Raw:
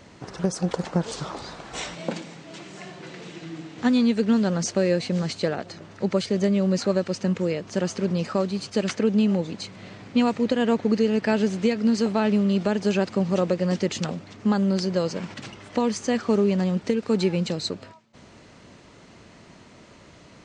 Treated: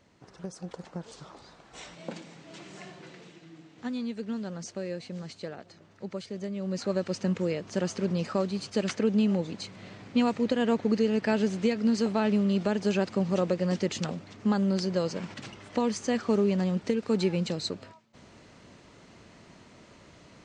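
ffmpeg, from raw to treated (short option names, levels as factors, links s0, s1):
-af "volume=1.78,afade=t=in:st=1.69:d=1.07:silence=0.316228,afade=t=out:st=2.76:d=0.65:silence=0.354813,afade=t=in:st=6.55:d=0.57:silence=0.334965"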